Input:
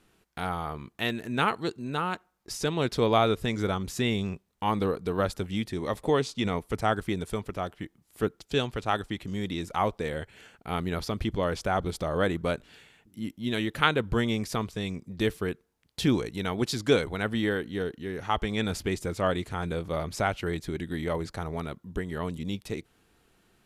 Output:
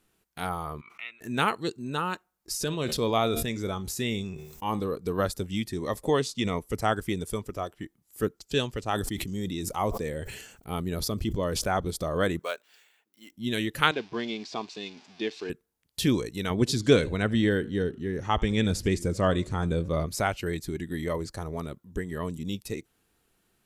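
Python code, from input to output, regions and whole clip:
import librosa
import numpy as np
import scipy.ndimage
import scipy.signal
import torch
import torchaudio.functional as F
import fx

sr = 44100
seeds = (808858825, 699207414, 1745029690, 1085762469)

y = fx.chain(x, sr, fx.double_bandpass(hz=1700.0, octaves=0.73),
    fx.pre_swell(db_per_s=60.0), at=(0.81, 1.21))
y = fx.chain(y, sr, fx.comb_fb(f0_hz=76.0, decay_s=0.46, harmonics='all', damping=0.0, mix_pct=40),
    fx.sustainer(db_per_s=45.0), at=(2.64, 4.92))
y = fx.chain(y, sr, fx.peak_eq(hz=1900.0, db=-4.0, octaves=2.7),
    fx.sustainer(db_per_s=47.0), at=(8.8, 11.64))
y = fx.chain(y, sr, fx.median_filter(points=5),
    fx.highpass(hz=630.0, slope=12), at=(12.39, 13.32))
y = fx.chain(y, sr, fx.crossing_spikes(level_db=-21.0),
    fx.cabinet(low_hz=310.0, low_slope=12, high_hz=3500.0, hz=(520.0, 730.0, 1300.0, 1900.0, 3000.0), db=(-9, 5, -7, -6, -4)), at=(13.91, 15.5))
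y = fx.chain(y, sr, fx.lowpass(hz=9300.0, slope=12),
    fx.low_shelf(hz=340.0, db=6.5),
    fx.echo_warbled(ms=80, feedback_pct=41, rate_hz=2.8, cents=143, wet_db=-21), at=(16.5, 20.06))
y = fx.noise_reduce_blind(y, sr, reduce_db=7)
y = fx.high_shelf(y, sr, hz=8300.0, db=11.5)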